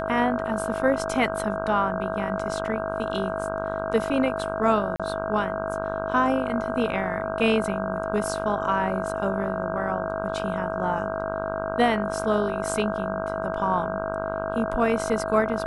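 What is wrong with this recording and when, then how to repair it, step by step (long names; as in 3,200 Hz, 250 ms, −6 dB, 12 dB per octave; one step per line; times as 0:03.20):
mains buzz 50 Hz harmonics 32 −32 dBFS
whistle 650 Hz −30 dBFS
0:04.96–0:05.00: drop-out 36 ms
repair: hum removal 50 Hz, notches 32
notch filter 650 Hz, Q 30
repair the gap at 0:04.96, 36 ms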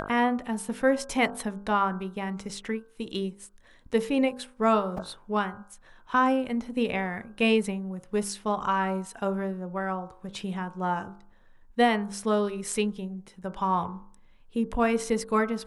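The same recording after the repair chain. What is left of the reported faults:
none of them is left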